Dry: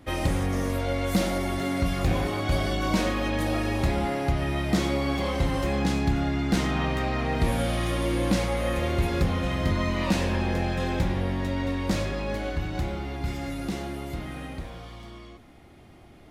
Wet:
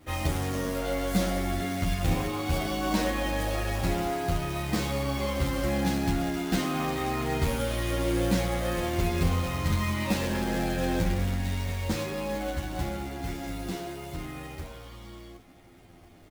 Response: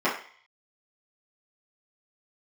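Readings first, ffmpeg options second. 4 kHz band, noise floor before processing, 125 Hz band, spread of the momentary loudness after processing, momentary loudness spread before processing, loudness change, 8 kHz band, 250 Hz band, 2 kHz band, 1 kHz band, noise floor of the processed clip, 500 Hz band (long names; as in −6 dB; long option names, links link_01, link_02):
−1.5 dB, −50 dBFS, −2.5 dB, 8 LU, 7 LU, −2.0 dB, +1.5 dB, −2.5 dB, −2.5 dB, −1.5 dB, −53 dBFS, −2.0 dB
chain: -filter_complex "[0:a]asplit=2[link_01][link_02];[link_02]adelay=23,volume=-11.5dB[link_03];[link_01][link_03]amix=inputs=2:normalize=0,acrusher=bits=3:mode=log:mix=0:aa=0.000001,asplit=2[link_04][link_05];[link_05]adelay=10,afreqshift=-0.42[link_06];[link_04][link_06]amix=inputs=2:normalize=1"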